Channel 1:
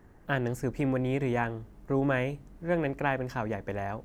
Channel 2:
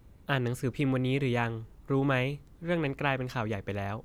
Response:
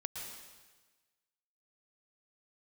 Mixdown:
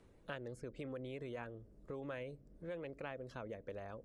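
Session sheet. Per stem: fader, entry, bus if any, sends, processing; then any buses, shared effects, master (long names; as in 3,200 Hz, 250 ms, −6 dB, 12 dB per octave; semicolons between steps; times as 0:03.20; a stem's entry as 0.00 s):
−17.0 dB, 0.00 s, no send, Bessel low-pass filter 2,100 Hz, order 8; low shelf with overshoot 700 Hz +7 dB, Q 3; brickwall limiter −15.5 dBFS, peak gain reduction 7.5 dB
−2.5 dB, 0.00 s, polarity flipped, no send, reverb reduction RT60 0.6 s; elliptic band-pass filter 470–9,700 Hz; automatic ducking −8 dB, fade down 0.50 s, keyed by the first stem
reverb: not used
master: downward compressor 2 to 1, threshold −48 dBFS, peak gain reduction 10 dB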